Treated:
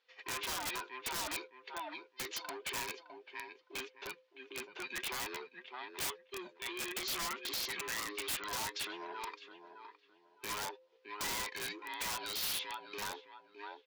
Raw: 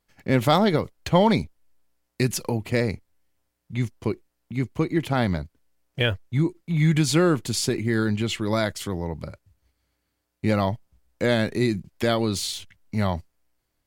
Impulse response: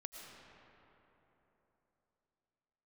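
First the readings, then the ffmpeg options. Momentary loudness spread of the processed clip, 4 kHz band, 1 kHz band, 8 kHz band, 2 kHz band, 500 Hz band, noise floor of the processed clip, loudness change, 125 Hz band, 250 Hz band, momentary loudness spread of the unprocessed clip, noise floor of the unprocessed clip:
13 LU, −8.0 dB, −12.5 dB, −6.0 dB, −9.0 dB, −22.0 dB, −69 dBFS, −15.5 dB, −35.5 dB, −28.0 dB, 14 LU, −77 dBFS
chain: -filter_complex "[0:a]afftfilt=real='real(if(between(b,1,1008),(2*floor((b-1)/24)+1)*24-b,b),0)':imag='imag(if(between(b,1,1008),(2*floor((b-1)/24)+1)*24-b,b),0)*if(between(b,1,1008),-1,1)':win_size=2048:overlap=0.75,flanger=delay=3.4:depth=5.3:regen=54:speed=0.53:shape=triangular,highpass=400,asplit=2[link_01][link_02];[link_02]adelay=612,lowpass=frequency=1900:poles=1,volume=-15dB,asplit=2[link_03][link_04];[link_04]adelay=612,lowpass=frequency=1900:poles=1,volume=0.27,asplit=2[link_05][link_06];[link_06]adelay=612,lowpass=frequency=1900:poles=1,volume=0.27[link_07];[link_01][link_03][link_05][link_07]amix=inputs=4:normalize=0,asplit=2[link_08][link_09];[link_09]alimiter=limit=-20.5dB:level=0:latency=1:release=74,volume=-0.5dB[link_10];[link_08][link_10]amix=inputs=2:normalize=0,acompressor=threshold=-33dB:ratio=2,aresample=16000,asoftclip=type=tanh:threshold=-29.5dB,aresample=44100,acontrast=28,lowpass=frequency=3600:width=0.5412,lowpass=frequency=3600:width=1.3066,aderivative,aeval=exprs='(mod(89.1*val(0)+1,2)-1)/89.1':channel_layout=same,volume=8dB"

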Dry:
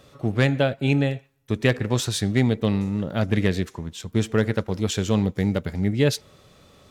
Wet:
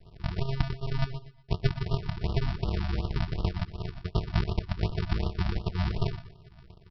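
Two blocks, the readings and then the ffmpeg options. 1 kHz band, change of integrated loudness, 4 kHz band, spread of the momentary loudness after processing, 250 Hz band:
−5.0 dB, −8.5 dB, −9.5 dB, 6 LU, −13.0 dB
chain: -filter_complex "[0:a]acrossover=split=220|1100[link_01][link_02][link_03];[link_01]acompressor=threshold=-35dB:ratio=4[link_04];[link_02]acompressor=threshold=-28dB:ratio=4[link_05];[link_03]acompressor=threshold=-36dB:ratio=4[link_06];[link_04][link_05][link_06]amix=inputs=3:normalize=0,aresample=11025,acrusher=samples=41:mix=1:aa=0.000001,aresample=44100,aecho=1:1:120|240|360:0.224|0.0649|0.0188,afftfilt=real='re*(1-between(b*sr/1024,420*pow(2000/420,0.5+0.5*sin(2*PI*2.7*pts/sr))/1.41,420*pow(2000/420,0.5+0.5*sin(2*PI*2.7*pts/sr))*1.41))':imag='im*(1-between(b*sr/1024,420*pow(2000/420,0.5+0.5*sin(2*PI*2.7*pts/sr))/1.41,420*pow(2000/420,0.5+0.5*sin(2*PI*2.7*pts/sr))*1.41))':win_size=1024:overlap=0.75,volume=1dB"

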